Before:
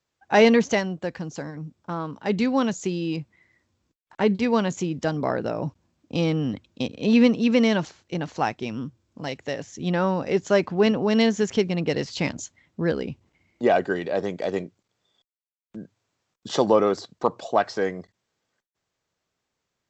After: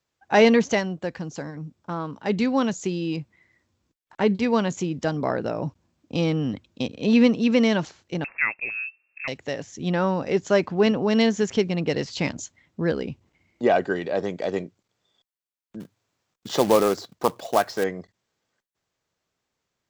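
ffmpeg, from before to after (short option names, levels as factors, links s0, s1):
-filter_complex "[0:a]asettb=1/sr,asplit=3[s0][s1][s2];[s0]atrim=end=8.244[s3];[s1]atrim=start=8.24:end=9.28,asetpts=PTS-STARTPTS,afade=t=in:d=0.004:c=qsin,afade=t=out:st=1.036:d=0.004:c=qsin,lowpass=f=2400:t=q:w=0.5098,lowpass=f=2400:t=q:w=0.6013,lowpass=f=2400:t=q:w=0.9,lowpass=f=2400:t=q:w=2.563,afreqshift=-2800[s4];[s2]atrim=start=9.276[s5];[s3][s4]acrossfade=d=0.004:c1=hsin:c2=qsin[s6];[s6][s5]acrossfade=d=0.004:c1=qsin:c2=hsin,asettb=1/sr,asplit=3[s7][s8][s9];[s7]atrim=end=15.804[s10];[s8]atrim=start=15.8:end=17.84,asetpts=PTS-STARTPTS,afade=t=in:d=0.004:c=qsin,afade=t=out:st=2.036:d=0.004:c=qsin,acrusher=bits=3:mode=log:mix=0:aa=0.000001[s11];[s9]atrim=start=17.836[s12];[s10][s11]acrossfade=d=0.004:c1=hsin:c2=qsin[s13];[s13][s12]acrossfade=d=0.004:c1=qsin:c2=hsin"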